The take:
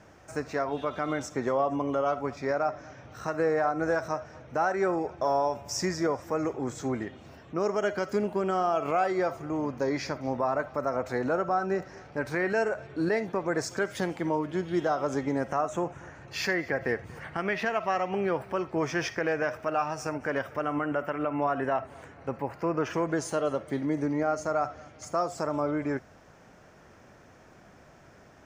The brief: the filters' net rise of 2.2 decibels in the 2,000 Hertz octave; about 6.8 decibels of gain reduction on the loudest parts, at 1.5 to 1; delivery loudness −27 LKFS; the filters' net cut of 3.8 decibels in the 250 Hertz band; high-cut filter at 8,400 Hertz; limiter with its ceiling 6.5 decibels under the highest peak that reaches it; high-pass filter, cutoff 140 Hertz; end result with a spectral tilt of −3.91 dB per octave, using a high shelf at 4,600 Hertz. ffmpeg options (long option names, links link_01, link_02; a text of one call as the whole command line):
ffmpeg -i in.wav -af "highpass=140,lowpass=8400,equalizer=frequency=250:width_type=o:gain=-5,equalizer=frequency=2000:width_type=o:gain=4,highshelf=frequency=4600:gain=-6.5,acompressor=threshold=-42dB:ratio=1.5,volume=11dB,alimiter=limit=-15.5dB:level=0:latency=1" out.wav